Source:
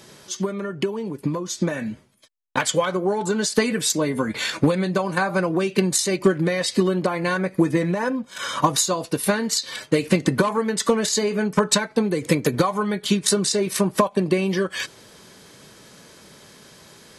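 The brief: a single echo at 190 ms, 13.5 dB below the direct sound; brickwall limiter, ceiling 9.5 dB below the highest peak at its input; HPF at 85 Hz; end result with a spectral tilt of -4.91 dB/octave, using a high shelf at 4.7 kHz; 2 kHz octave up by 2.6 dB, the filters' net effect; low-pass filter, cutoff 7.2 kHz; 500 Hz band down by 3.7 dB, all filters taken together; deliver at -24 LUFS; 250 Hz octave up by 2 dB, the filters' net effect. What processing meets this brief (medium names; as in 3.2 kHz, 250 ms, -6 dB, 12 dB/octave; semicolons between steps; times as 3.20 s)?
high-pass 85 Hz; low-pass 7.2 kHz; peaking EQ 250 Hz +5 dB; peaking EQ 500 Hz -7 dB; peaking EQ 2 kHz +5 dB; treble shelf 4.7 kHz -7 dB; peak limiter -13 dBFS; delay 190 ms -13.5 dB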